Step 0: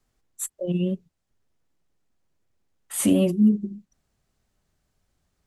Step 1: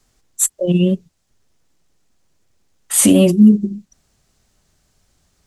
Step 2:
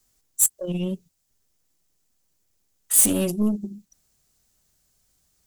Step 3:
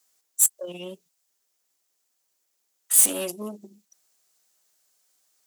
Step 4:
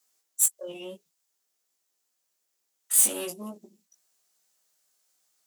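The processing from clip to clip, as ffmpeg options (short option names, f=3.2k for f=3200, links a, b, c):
-af "equalizer=f=6.3k:t=o:w=1.7:g=6.5,alimiter=level_in=11dB:limit=-1dB:release=50:level=0:latency=1,volume=-1dB"
-af "aeval=exprs='0.841*(cos(1*acos(clip(val(0)/0.841,-1,1)))-cos(1*PI/2))+0.237*(cos(2*acos(clip(val(0)/0.841,-1,1)))-cos(2*PI/2))+0.0211*(cos(4*acos(clip(val(0)/0.841,-1,1)))-cos(4*PI/2))+0.0596*(cos(5*acos(clip(val(0)/0.841,-1,1)))-cos(5*PI/2))':c=same,aemphasis=mode=production:type=50fm,volume=-13.5dB"
-af "highpass=500"
-af "flanger=delay=17:depth=2.7:speed=0.53"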